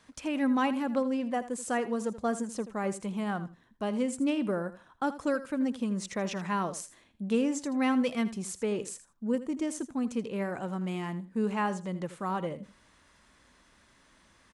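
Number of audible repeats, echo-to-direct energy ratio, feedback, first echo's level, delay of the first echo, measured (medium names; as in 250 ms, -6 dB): 2, -14.5 dB, 15%, -14.5 dB, 81 ms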